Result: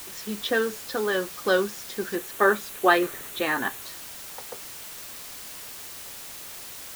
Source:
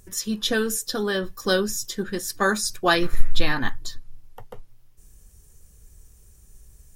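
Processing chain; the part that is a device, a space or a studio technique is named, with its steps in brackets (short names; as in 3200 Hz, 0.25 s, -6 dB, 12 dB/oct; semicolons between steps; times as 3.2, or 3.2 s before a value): wax cylinder (BPF 330–2500 Hz; wow and flutter; white noise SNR 11 dB); 2.15–3.82 thirty-one-band EQ 400 Hz +5 dB, 5000 Hz -8 dB, 12500 Hz +4 dB; gain +1.5 dB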